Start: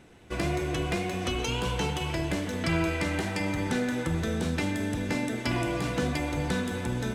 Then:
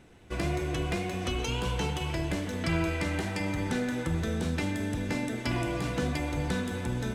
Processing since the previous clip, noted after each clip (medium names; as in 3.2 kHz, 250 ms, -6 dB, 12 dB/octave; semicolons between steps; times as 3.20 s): bass shelf 87 Hz +5.5 dB; trim -2.5 dB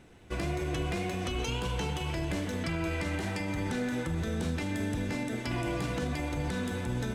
peak limiter -23.5 dBFS, peak gain reduction 6.5 dB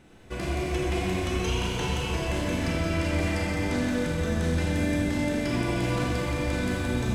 Schroeder reverb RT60 3.3 s, combs from 29 ms, DRR -4 dB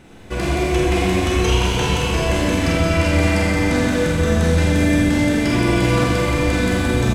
doubling 47 ms -6 dB; trim +9 dB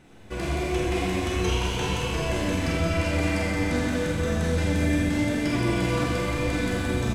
flange 0.91 Hz, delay 6.2 ms, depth 7.3 ms, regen +70%; trim -3.5 dB